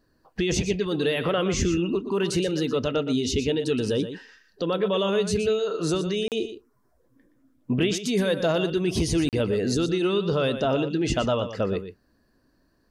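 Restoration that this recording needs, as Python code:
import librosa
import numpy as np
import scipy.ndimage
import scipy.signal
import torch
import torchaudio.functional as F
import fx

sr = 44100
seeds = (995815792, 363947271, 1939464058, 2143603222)

y = fx.fix_interpolate(x, sr, at_s=(6.28, 9.29), length_ms=38.0)
y = fx.fix_echo_inverse(y, sr, delay_ms=120, level_db=-10.5)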